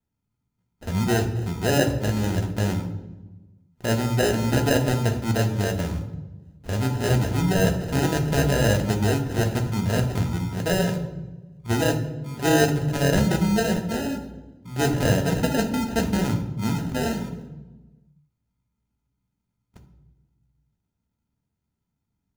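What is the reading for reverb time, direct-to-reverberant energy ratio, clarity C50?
1.2 s, 4.0 dB, 9.5 dB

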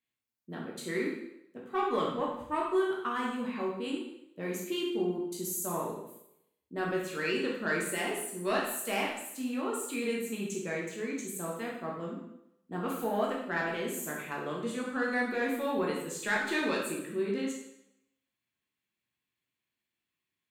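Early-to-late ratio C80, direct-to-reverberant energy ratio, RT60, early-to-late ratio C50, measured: 6.0 dB, −3.5 dB, 0.80 s, 3.0 dB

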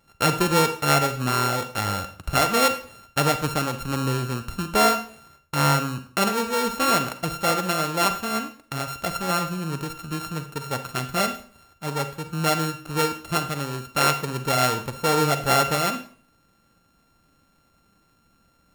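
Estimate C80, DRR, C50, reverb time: 15.5 dB, 9.5 dB, 11.5 dB, 0.45 s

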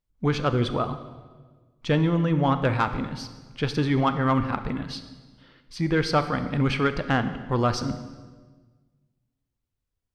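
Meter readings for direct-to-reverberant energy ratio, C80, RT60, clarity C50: 10.0 dB, 12.5 dB, 1.4 s, 11.0 dB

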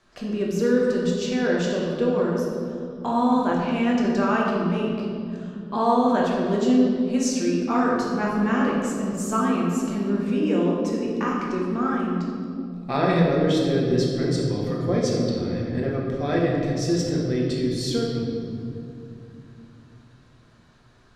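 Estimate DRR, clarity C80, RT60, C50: −3.5 dB, 2.0 dB, 2.5 s, 0.0 dB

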